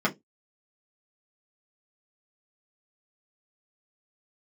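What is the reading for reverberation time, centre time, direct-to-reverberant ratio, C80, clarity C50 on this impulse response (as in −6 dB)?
0.15 s, 10 ms, −5.0 dB, 32.5 dB, 21.0 dB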